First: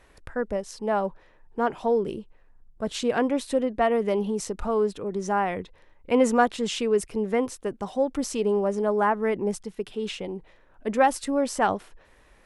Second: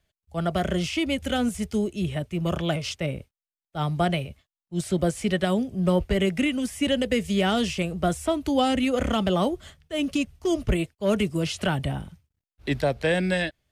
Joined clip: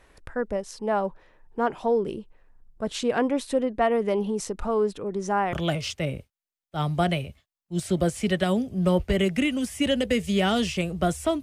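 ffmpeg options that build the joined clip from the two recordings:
-filter_complex "[0:a]apad=whole_dur=11.42,atrim=end=11.42,atrim=end=5.532[a];[1:a]atrim=start=2.538:end=8.43[b];[a][b]acrossfade=d=0.004:c1=hsin:c2=hsin"

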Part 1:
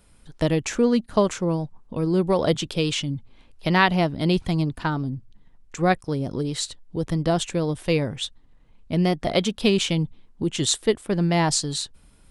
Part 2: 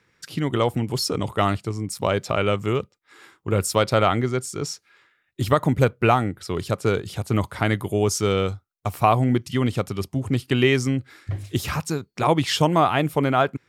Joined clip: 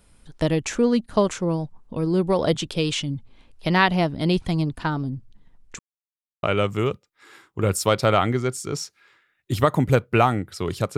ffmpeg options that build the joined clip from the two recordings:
-filter_complex "[0:a]apad=whole_dur=10.97,atrim=end=10.97,asplit=2[a][b];[a]atrim=end=5.79,asetpts=PTS-STARTPTS,afade=t=out:st=5.786:d=0.004:c=hsin[c];[b]atrim=start=5.79:end=6.43,asetpts=PTS-STARTPTS,volume=0[d];[1:a]atrim=start=2.32:end=6.86,asetpts=PTS-STARTPTS,afade=t=in:d=0.004:c=hsin[e];[c][d][e]concat=n=3:v=0:a=1"

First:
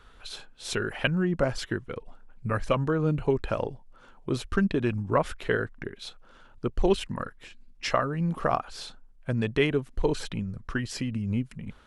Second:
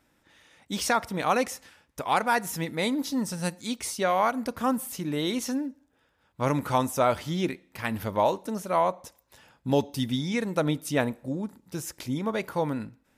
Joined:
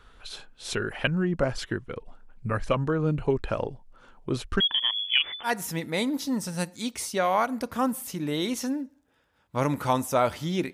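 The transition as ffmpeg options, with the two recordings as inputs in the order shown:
-filter_complex "[0:a]asettb=1/sr,asplit=3[a][b][c];[a]atrim=end=4.604[d];[b]atrim=start=4.6:end=5.51,asetpts=PTS-STARTPTS,afade=t=in:d=0.004:c=qsin,afade=t=out:st=0.906:d=0.004:c=qsin,lowpass=f=3k:t=q:w=0.5098,lowpass=f=3k:t=q:w=0.6013,lowpass=f=3k:t=q:w=0.9,lowpass=f=3k:t=q:w=2.563,afreqshift=-3500[e];[c]atrim=start=5.506[f];[d][e]acrossfade=d=0.004:c1=hsin:c2=qsin[g];[g][f]acrossfade=d=0.004:c1=qsin:c2=hsin,apad=whole_dur=10.73,atrim=end=10.73,atrim=end=5.51,asetpts=PTS-STARTPTS[h];[1:a]atrim=start=2.28:end=7.58,asetpts=PTS-STARTPTS[i];[h][i]acrossfade=d=0.08:c1=tri:c2=tri"

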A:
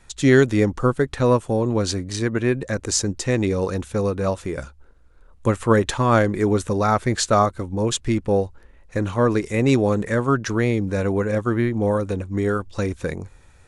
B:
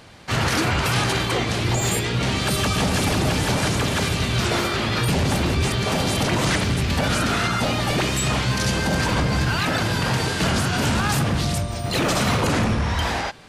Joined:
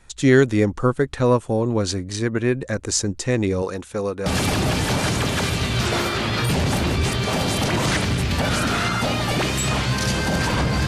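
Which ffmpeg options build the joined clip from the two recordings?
-filter_complex "[0:a]asettb=1/sr,asplit=3[a][b][c];[a]atrim=end=3.624[d];[b]atrim=start=3.62:end=4.26,asetpts=PTS-STARTPTS,afade=t=in:d=0.004:c=qsin,afade=t=out:st=0.636:d=0.004:c=qsin,lowshelf=f=180:g=-11.5[e];[c]atrim=start=4.256[f];[d][e]acrossfade=d=0.004:c1=hsin:c2=qsin[g];[g][f]acrossfade=d=0.004:c1=qsin:c2=hsin,apad=whole_dur=10.87,atrim=end=10.87,atrim=end=4.262[h];[1:a]atrim=start=2.848:end=9.46[i];[h][i]acrossfade=d=0.004:c1=hsin:c2=hsin"

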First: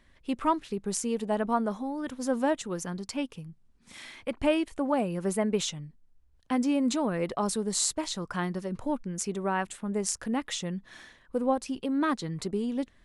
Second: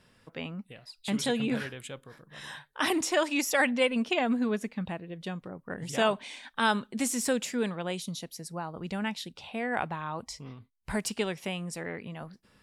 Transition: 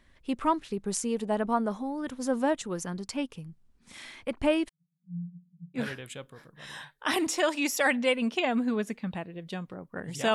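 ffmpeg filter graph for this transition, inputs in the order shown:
-filter_complex "[0:a]asettb=1/sr,asplit=3[a][b][c];[a]atrim=end=4.694[d];[b]atrim=start=4.69:end=5.8,asetpts=PTS-STARTPTS,afade=t=in:d=0.004:c=qsin,afade=t=out:st=1.106:d=0.004:c=qsin,asuperpass=centerf=160:order=12:qfactor=4.8[e];[c]atrim=start=5.796[f];[d][e]acrossfade=d=0.004:c1=hsin:c2=qsin[g];[g][f]acrossfade=d=0.004:c1=qsin:c2=hsin,apad=whole_dur=10.34,atrim=end=10.34,atrim=end=5.8,asetpts=PTS-STARTPTS[h];[1:a]atrim=start=1.48:end=6.08,asetpts=PTS-STARTPTS[i];[h][i]acrossfade=d=0.06:c1=tri:c2=tri"

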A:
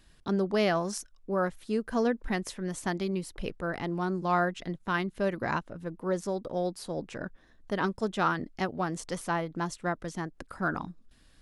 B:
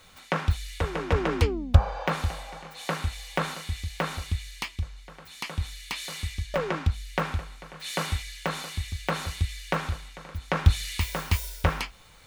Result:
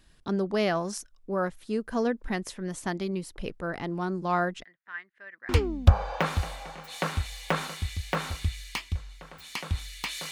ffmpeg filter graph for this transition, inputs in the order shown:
-filter_complex "[0:a]asplit=3[a][b][c];[a]afade=t=out:st=4.62:d=0.02[d];[b]bandpass=f=1.8k:t=q:w=6.5:csg=0,afade=t=in:st=4.62:d=0.02,afade=t=out:st=5.49:d=0.02[e];[c]afade=t=in:st=5.49:d=0.02[f];[d][e][f]amix=inputs=3:normalize=0,apad=whole_dur=10.31,atrim=end=10.31,atrim=end=5.492[g];[1:a]atrim=start=1.358:end=6.18[h];[g][h]acrossfade=d=0.004:c1=hsin:c2=hsin"

